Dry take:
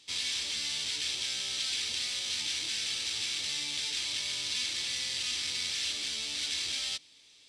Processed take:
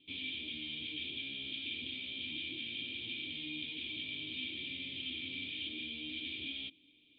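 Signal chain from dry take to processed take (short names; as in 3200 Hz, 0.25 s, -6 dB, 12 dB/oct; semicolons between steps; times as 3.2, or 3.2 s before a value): vocal tract filter i; speed mistake 24 fps film run at 25 fps; gain +11 dB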